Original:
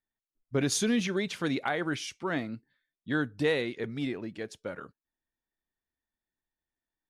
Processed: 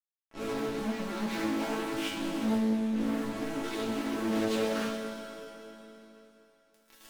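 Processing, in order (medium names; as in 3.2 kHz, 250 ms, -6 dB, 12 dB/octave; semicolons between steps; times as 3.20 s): reverse spectral sustain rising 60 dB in 0.35 s; recorder AGC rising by 12 dB/s; 2.08–3.64 s: inverse Chebyshev band-stop 1–3.9 kHz, stop band 70 dB; low-pass that closes with the level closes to 330 Hz, closed at -24 dBFS; waveshaping leveller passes 3; fuzz box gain 49 dB, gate -51 dBFS; chord resonator A3 major, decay 0.49 s; on a send at -4 dB: reverberation RT60 3.5 s, pre-delay 56 ms; on the sum: loudspeaker Doppler distortion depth 0.4 ms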